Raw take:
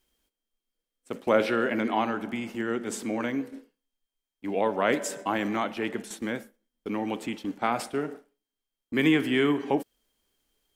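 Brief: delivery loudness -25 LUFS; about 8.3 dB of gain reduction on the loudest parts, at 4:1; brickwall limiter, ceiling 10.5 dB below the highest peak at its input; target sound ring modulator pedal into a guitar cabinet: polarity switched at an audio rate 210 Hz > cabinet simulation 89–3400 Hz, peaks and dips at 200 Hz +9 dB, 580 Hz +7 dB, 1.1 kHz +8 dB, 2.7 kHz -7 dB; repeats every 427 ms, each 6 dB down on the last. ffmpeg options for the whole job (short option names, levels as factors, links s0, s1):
-af "acompressor=threshold=0.0447:ratio=4,alimiter=level_in=1.19:limit=0.0631:level=0:latency=1,volume=0.841,aecho=1:1:427|854|1281|1708|2135|2562:0.501|0.251|0.125|0.0626|0.0313|0.0157,aeval=exprs='val(0)*sgn(sin(2*PI*210*n/s))':c=same,highpass=89,equalizer=f=200:t=q:w=4:g=9,equalizer=f=580:t=q:w=4:g=7,equalizer=f=1100:t=q:w=4:g=8,equalizer=f=2700:t=q:w=4:g=-7,lowpass=f=3400:w=0.5412,lowpass=f=3400:w=1.3066,volume=2.66"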